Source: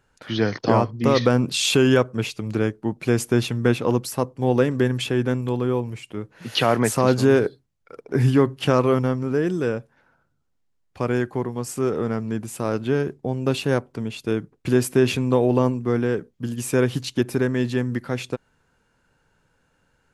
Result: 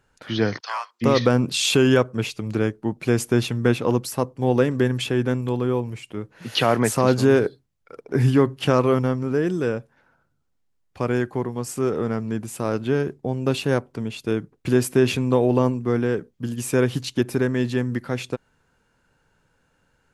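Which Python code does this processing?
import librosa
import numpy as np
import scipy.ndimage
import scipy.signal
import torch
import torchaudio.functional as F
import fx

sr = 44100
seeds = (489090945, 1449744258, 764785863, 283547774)

y = fx.highpass(x, sr, hz=1100.0, slope=24, at=(0.59, 1.01), fade=0.02)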